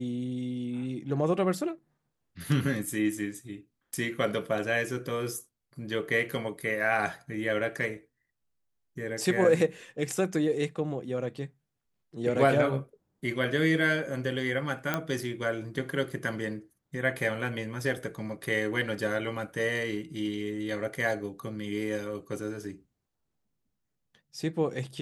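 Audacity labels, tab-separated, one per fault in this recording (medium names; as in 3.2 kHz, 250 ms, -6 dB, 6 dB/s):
14.940000	14.940000	pop -13 dBFS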